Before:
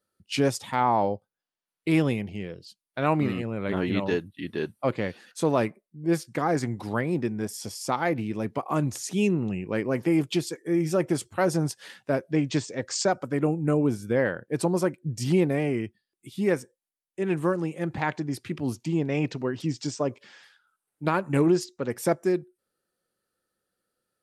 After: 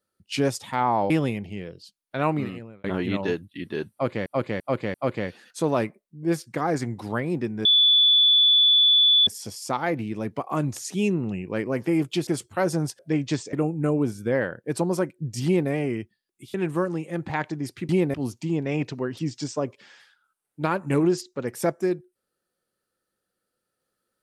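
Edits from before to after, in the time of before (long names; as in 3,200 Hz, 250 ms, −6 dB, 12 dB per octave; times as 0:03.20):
0:01.10–0:01.93: remove
0:03.10–0:03.67: fade out
0:04.75–0:05.09: repeat, 4 plays
0:07.46: insert tone 3,460 Hz −14 dBFS 1.62 s
0:10.46–0:11.08: remove
0:11.80–0:12.22: remove
0:12.76–0:13.37: remove
0:15.29–0:15.54: duplicate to 0:18.57
0:16.38–0:17.22: remove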